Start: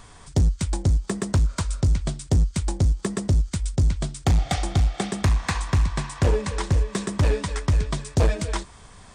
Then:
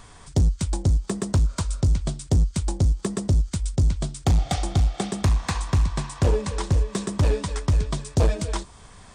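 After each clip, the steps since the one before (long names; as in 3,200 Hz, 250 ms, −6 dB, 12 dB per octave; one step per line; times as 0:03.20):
dynamic equaliser 1,900 Hz, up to −5 dB, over −49 dBFS, Q 1.4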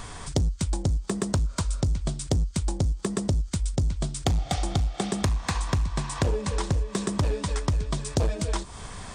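downward compressor 5 to 1, threshold −32 dBFS, peak gain reduction 14 dB
level +8 dB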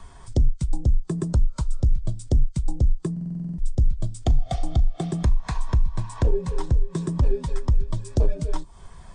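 frequency shifter −31 Hz
buffer that repeats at 0:03.12, samples 2,048, times 9
every bin expanded away from the loudest bin 1.5 to 1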